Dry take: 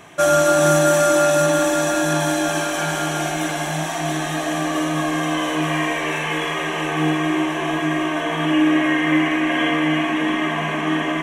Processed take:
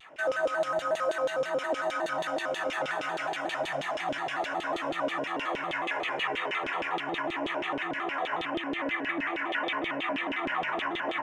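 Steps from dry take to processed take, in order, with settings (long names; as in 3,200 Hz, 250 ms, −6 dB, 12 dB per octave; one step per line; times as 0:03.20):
brickwall limiter −14.5 dBFS, peak gain reduction 9.5 dB
auto-filter band-pass saw down 6.3 Hz 430–3,400 Hz
pitch modulation by a square or saw wave square 5.5 Hz, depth 160 cents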